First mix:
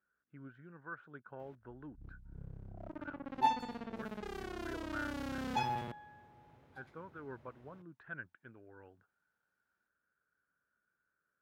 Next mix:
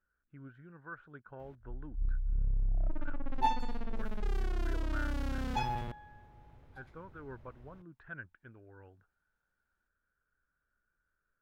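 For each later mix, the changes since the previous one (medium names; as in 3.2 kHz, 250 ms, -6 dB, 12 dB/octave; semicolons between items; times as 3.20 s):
master: remove high-pass 140 Hz 12 dB/octave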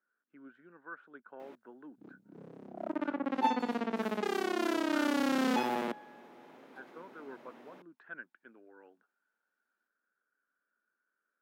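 first sound +11.5 dB; master: add steep high-pass 220 Hz 36 dB/octave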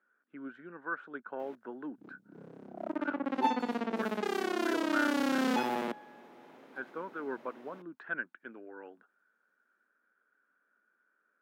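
speech +9.5 dB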